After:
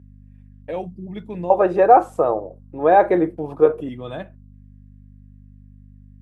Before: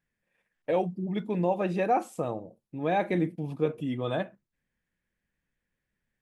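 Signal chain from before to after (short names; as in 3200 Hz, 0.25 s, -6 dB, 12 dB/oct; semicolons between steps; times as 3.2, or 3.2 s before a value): 1.5–3.89 band shelf 740 Hz +15.5 dB 2.6 oct; hum 50 Hz, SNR 22 dB; HPF 55 Hz; gain -1.5 dB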